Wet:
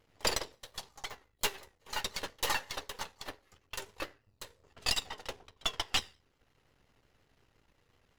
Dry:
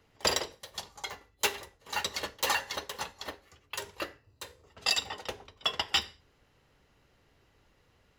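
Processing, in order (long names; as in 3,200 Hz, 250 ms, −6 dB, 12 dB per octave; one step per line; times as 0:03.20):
gain on one half-wave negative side −12 dB
transient designer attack 0 dB, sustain −4 dB
pitch modulation by a square or saw wave saw down 5.7 Hz, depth 100 cents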